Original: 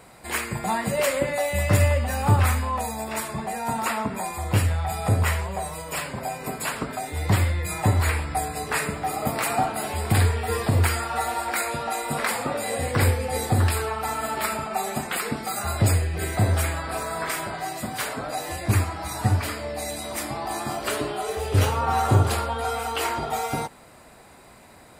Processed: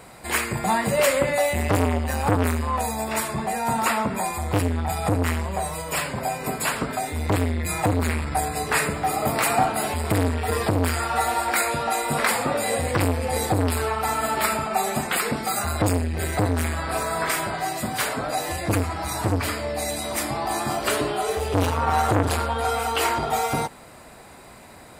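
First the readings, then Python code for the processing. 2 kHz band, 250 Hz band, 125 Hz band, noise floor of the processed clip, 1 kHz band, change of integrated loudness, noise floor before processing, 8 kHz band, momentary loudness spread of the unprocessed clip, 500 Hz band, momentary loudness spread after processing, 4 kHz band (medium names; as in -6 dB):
+2.5 dB, +4.0 dB, -3.0 dB, -45 dBFS, +3.0 dB, +1.5 dB, -49 dBFS, +2.5 dB, 8 LU, +3.0 dB, 5 LU, +2.5 dB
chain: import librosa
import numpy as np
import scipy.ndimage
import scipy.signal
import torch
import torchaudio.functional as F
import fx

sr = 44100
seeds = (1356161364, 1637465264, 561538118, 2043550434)

y = fx.transformer_sat(x, sr, knee_hz=860.0)
y = F.gain(torch.from_numpy(y), 4.0).numpy()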